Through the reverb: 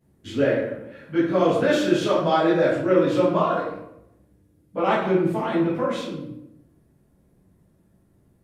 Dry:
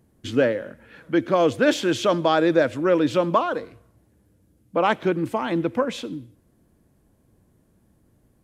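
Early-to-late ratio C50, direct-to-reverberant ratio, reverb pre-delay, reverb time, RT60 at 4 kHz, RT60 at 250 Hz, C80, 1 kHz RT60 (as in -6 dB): 1.0 dB, -11.5 dB, 8 ms, 0.85 s, 0.55 s, 1.0 s, 5.0 dB, 0.75 s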